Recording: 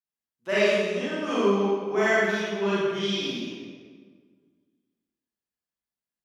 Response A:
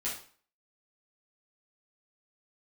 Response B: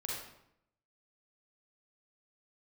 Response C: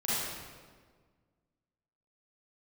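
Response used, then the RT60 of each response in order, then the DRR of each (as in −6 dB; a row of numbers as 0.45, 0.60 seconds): C; 0.45, 0.75, 1.6 seconds; −8.5, −4.0, −11.0 decibels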